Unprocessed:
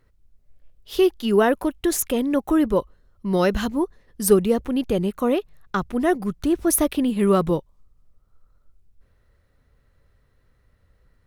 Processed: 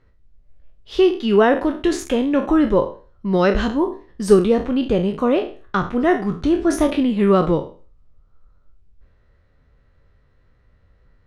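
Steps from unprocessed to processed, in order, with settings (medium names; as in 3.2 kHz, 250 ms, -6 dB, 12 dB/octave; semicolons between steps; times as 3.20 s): spectral sustain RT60 0.38 s; distance through air 120 m; trim +3 dB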